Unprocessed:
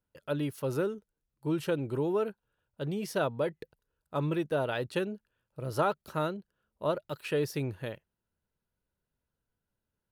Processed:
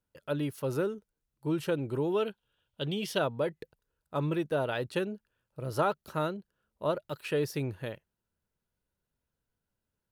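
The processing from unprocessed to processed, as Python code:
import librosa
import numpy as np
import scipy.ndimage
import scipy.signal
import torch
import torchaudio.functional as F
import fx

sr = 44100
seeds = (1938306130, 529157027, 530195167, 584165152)

y = fx.peak_eq(x, sr, hz=3200.0, db=15.0, octaves=0.57, at=(2.12, 3.19))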